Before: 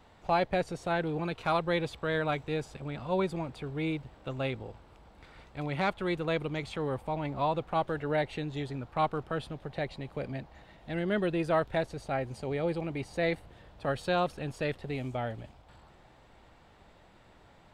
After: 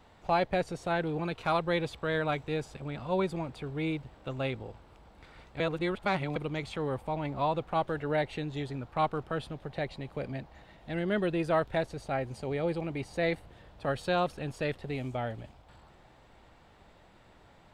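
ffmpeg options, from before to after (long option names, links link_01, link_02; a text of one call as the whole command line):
ffmpeg -i in.wav -filter_complex "[0:a]asplit=3[link_01][link_02][link_03];[link_01]atrim=end=5.602[link_04];[link_02]atrim=start=5.598:end=6.362,asetpts=PTS-STARTPTS,areverse[link_05];[link_03]atrim=start=6.358[link_06];[link_04][link_05]acrossfade=duration=0.004:curve1=hsin:curve2=hsin[link_07];[link_07][link_06]acrossfade=duration=0.004:curve1=hsin:curve2=hsin" out.wav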